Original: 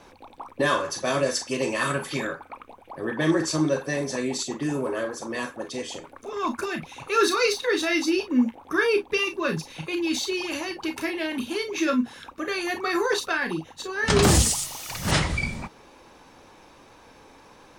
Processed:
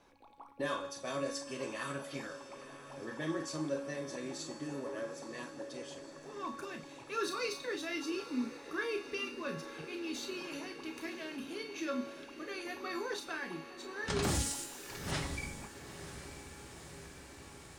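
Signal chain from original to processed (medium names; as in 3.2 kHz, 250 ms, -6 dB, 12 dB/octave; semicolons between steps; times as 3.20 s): feedback comb 280 Hz, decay 1.2 s, mix 80%; echo that smears into a reverb 964 ms, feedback 72%, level -12.5 dB; trim -1.5 dB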